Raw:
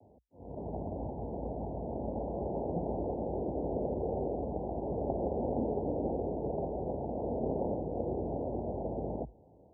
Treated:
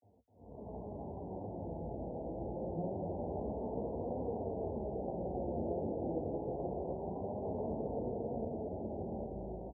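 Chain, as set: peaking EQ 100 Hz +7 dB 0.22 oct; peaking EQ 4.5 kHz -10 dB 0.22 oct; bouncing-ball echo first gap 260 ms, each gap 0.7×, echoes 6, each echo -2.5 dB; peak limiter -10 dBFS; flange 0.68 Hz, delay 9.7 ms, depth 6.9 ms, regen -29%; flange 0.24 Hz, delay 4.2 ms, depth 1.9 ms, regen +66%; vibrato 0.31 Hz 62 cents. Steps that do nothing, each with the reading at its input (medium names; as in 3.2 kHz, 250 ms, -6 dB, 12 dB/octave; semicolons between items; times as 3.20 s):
peaking EQ 4.5 kHz: input has nothing above 960 Hz; peak limiter -10 dBFS: peak at its input -17.0 dBFS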